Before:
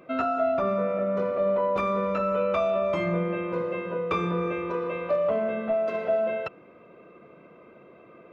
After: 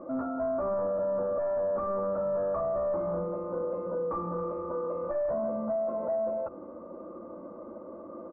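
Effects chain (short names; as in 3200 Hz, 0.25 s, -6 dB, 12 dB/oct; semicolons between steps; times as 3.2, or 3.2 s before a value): comb 3.5 ms, depth 85%; sine folder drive 8 dB, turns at -11 dBFS; limiter -20.5 dBFS, peak gain reduction 9.5 dB; steep low-pass 1200 Hz 36 dB/oct; notches 50/100/150/200/250/300/350 Hz; gain -5.5 dB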